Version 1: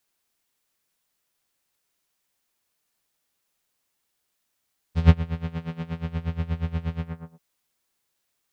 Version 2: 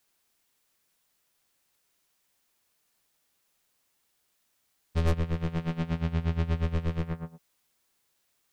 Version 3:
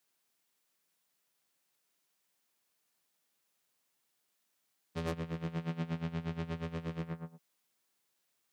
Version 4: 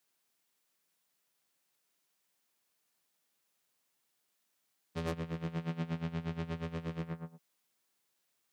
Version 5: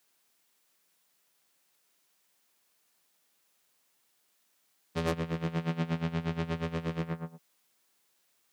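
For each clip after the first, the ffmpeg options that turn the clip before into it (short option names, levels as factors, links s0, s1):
-af "aeval=exprs='(tanh(22.4*val(0)+0.5)-tanh(0.5))/22.4':c=same,volume=1.78"
-af "highpass=f=120:w=0.5412,highpass=f=120:w=1.3066,volume=0.531"
-af anull
-af "lowshelf=f=160:g=-4.5,volume=2.24"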